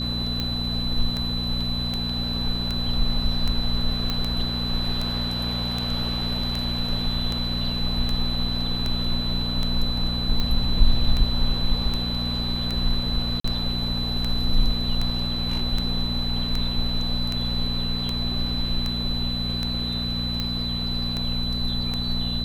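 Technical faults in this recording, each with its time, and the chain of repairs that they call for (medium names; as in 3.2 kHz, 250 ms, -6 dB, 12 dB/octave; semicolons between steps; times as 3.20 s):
hum 60 Hz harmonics 4 -29 dBFS
tick 78 rpm -13 dBFS
whine 4 kHz -28 dBFS
4.10 s: pop -12 dBFS
13.40–13.44 s: dropout 44 ms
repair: de-click; de-hum 60 Hz, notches 4; band-stop 4 kHz, Q 30; interpolate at 13.40 s, 44 ms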